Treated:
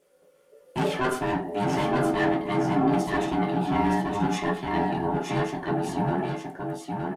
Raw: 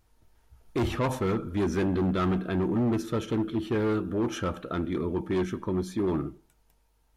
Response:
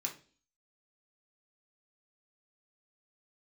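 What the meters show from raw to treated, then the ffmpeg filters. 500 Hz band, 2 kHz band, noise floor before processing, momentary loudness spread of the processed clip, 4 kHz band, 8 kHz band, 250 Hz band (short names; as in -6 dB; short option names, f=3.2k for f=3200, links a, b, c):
+2.0 dB, +8.0 dB, -67 dBFS, 8 LU, +4.5 dB, +4.0 dB, +1.5 dB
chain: -filter_complex "[0:a]aeval=exprs='val(0)*sin(2*PI*510*n/s)':c=same,aecho=1:1:919:0.631[a];[1:a]atrim=start_sample=2205,afade=t=out:st=0.17:d=0.01,atrim=end_sample=7938,asetrate=57330,aresample=44100[b];[a][b]afir=irnorm=-1:irlink=0,volume=7.5dB"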